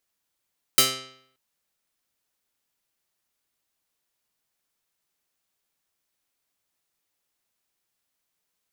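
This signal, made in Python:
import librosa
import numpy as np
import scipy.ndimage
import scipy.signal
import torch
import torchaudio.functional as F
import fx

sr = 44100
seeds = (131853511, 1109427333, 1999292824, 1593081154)

y = fx.pluck(sr, length_s=0.58, note=48, decay_s=0.67, pick=0.15, brightness='medium')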